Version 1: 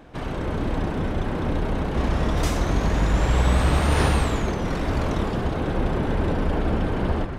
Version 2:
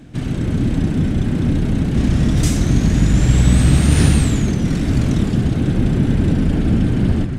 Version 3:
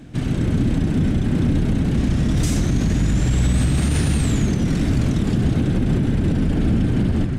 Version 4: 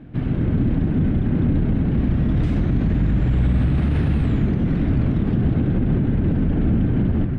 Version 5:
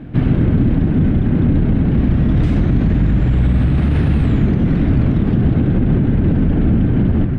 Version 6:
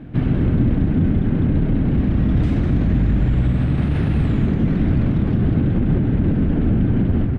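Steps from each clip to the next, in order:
graphic EQ 125/250/500/1000/8000 Hz +9/+7/-6/-11/+8 dB; gain +3.5 dB
limiter -10.5 dBFS, peak gain reduction 9 dB
air absorption 490 m
vocal rider 0.5 s; gain +5 dB
echo 0.199 s -8 dB; gain -4 dB

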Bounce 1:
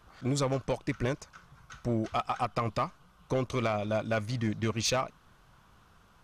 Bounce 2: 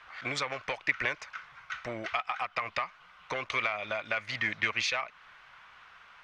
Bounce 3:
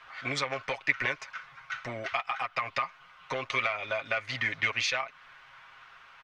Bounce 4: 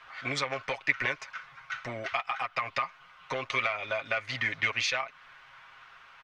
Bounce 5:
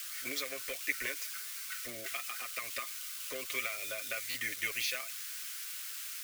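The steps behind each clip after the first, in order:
three-band isolator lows -17 dB, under 580 Hz, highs -20 dB, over 5800 Hz; compressor 12:1, threshold -37 dBFS, peak gain reduction 11 dB; bell 2100 Hz +13.5 dB 1.1 oct; gain +4 dB
comb 7.4 ms, depth 58%
nothing audible
switching spikes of -25.5 dBFS; fixed phaser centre 360 Hz, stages 4; stuck buffer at 4.3, samples 512, times 3; gain -5.5 dB

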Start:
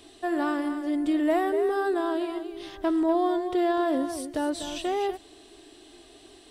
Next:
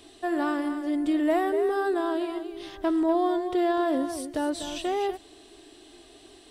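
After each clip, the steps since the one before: nothing audible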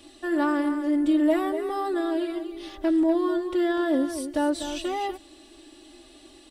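comb 3.5 ms, depth 87%; gain -1.5 dB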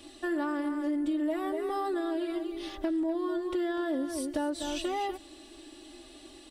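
compressor 4:1, threshold -29 dBFS, peak gain reduction 10.5 dB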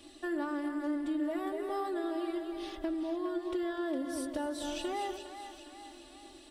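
split-band echo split 550 Hz, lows 0.1 s, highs 0.408 s, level -9 dB; gain -4 dB

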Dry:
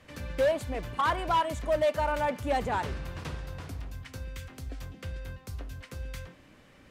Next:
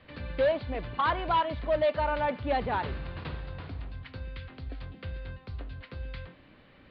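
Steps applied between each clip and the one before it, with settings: steep low-pass 4500 Hz 72 dB/oct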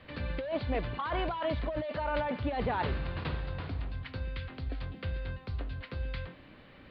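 negative-ratio compressor -31 dBFS, ratio -1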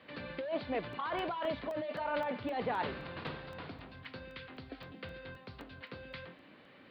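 flange 1.4 Hz, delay 3.4 ms, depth 5.4 ms, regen -77%; HPF 190 Hz 12 dB/oct; crackling interface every 0.26 s, samples 64, zero, from 0.93; gain +2 dB

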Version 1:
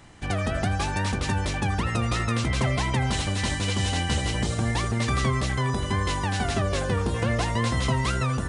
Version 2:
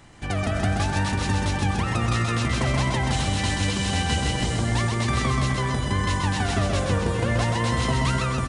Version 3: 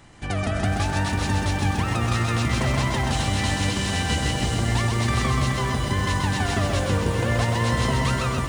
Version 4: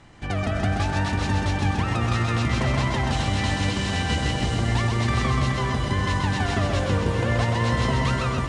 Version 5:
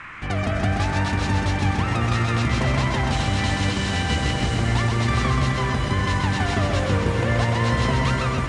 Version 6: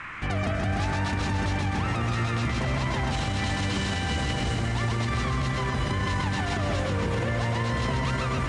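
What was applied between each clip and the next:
feedback echo 0.129 s, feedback 52%, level -4 dB
lo-fi delay 0.425 s, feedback 80%, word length 7-bit, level -11 dB
air absorption 63 m
band noise 1000–2400 Hz -40 dBFS; gain +1.5 dB
limiter -18.5 dBFS, peak gain reduction 10.5 dB

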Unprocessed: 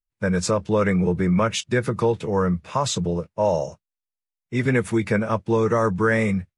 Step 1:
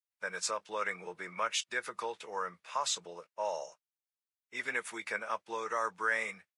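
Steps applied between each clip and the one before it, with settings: HPF 960 Hz 12 dB/oct; gain -6.5 dB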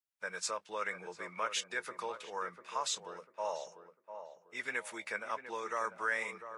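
tape echo 0.696 s, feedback 40%, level -8 dB, low-pass 1200 Hz; gain -2.5 dB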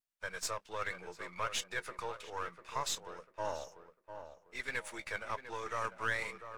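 half-wave gain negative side -7 dB; vibrato 0.69 Hz 13 cents; gain +1.5 dB

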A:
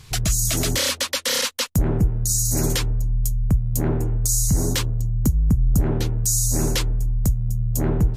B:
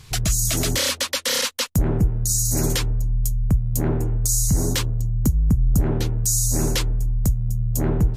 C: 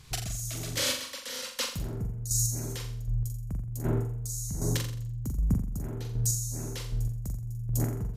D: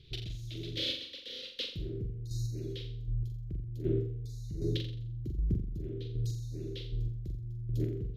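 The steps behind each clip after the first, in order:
nothing audible
chopper 1.3 Hz, depth 65%, duty 20%; on a send: flutter echo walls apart 7.4 m, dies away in 0.5 s; on the sum: gain -7.5 dB
EQ curve 130 Hz 0 dB, 250 Hz -5 dB, 350 Hz +10 dB, 550 Hz -6 dB, 860 Hz -29 dB, 3600 Hz +6 dB, 7800 Hz -28 dB, 13000 Hz -23 dB; gain -4 dB

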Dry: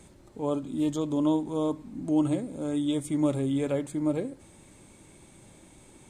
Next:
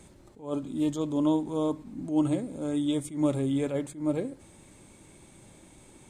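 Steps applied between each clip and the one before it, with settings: attack slew limiter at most 150 dB/s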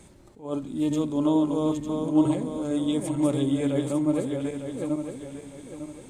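regenerating reverse delay 0.451 s, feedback 57%, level -3.5 dB; gain +1.5 dB

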